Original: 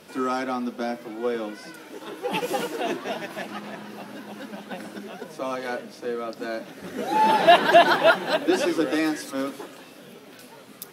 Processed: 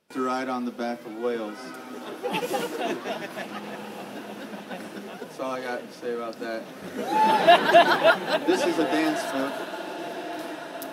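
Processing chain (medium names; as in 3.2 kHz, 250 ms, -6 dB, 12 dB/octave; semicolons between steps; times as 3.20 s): gate with hold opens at -35 dBFS; on a send: echo that smears into a reverb 1451 ms, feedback 51%, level -13 dB; on the sum: trim -1 dB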